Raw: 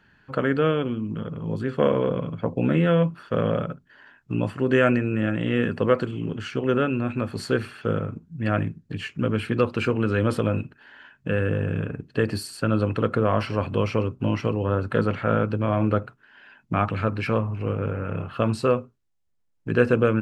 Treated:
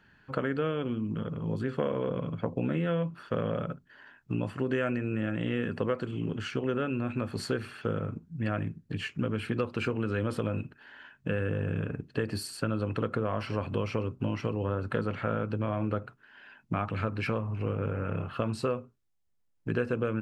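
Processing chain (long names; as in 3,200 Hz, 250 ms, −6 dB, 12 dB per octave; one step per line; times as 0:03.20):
downward compressor 4 to 1, threshold −24 dBFS, peak gain reduction 10 dB
level −2.5 dB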